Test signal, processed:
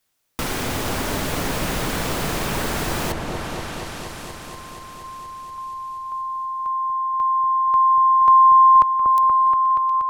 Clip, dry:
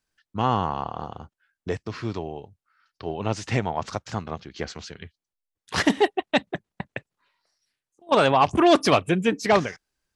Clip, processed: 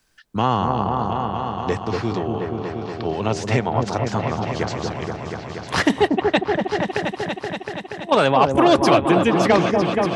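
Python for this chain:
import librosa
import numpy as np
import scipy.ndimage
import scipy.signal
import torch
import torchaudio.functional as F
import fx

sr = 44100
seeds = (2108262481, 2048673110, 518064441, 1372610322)

p1 = x + fx.echo_opening(x, sr, ms=238, hz=750, octaves=1, feedback_pct=70, wet_db=-3, dry=0)
p2 = fx.band_squash(p1, sr, depth_pct=40)
y = p2 * librosa.db_to_amplitude(3.0)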